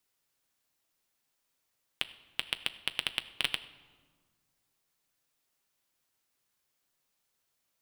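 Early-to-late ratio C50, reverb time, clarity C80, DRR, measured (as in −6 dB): 15.0 dB, 1.6 s, 16.5 dB, 9.0 dB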